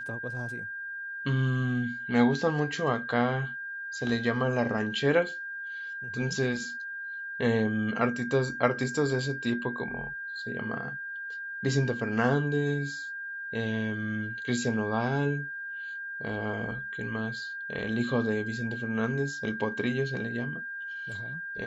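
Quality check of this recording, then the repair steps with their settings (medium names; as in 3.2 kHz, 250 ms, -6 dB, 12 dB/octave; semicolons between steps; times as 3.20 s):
whine 1.6 kHz -35 dBFS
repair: band-stop 1.6 kHz, Q 30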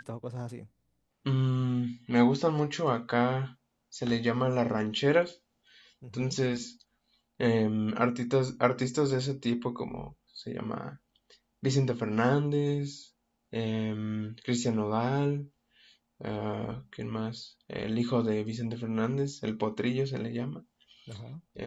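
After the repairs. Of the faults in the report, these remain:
nothing left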